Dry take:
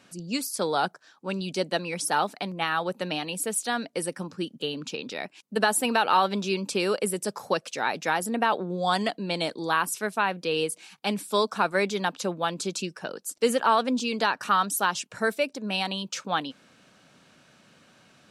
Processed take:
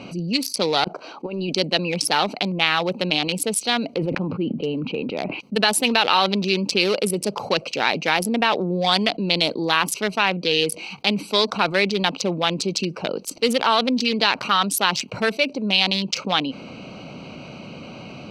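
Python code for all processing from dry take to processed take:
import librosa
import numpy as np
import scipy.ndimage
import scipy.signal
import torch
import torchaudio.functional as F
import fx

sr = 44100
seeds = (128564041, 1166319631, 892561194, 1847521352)

y = fx.chain(x, sr, fx.highpass(hz=350.0, slope=12),
    fx.tilt_eq(slope=-2.0),
    fx.over_compress(threshold_db=-37.0, ratio=-0.5), at=(0.84, 1.54))
y = fx.chain(y, sr, fx.air_absorb(metres=440.0),
    fx.sustainer(db_per_s=76.0), at=(3.96, 5.4))
y = fx.wiener(y, sr, points=25)
y = fx.band_shelf(y, sr, hz=3500.0, db=11.0, octaves=1.7)
y = fx.env_flatten(y, sr, amount_pct=50)
y = F.gain(torch.from_numpy(y), 1.0).numpy()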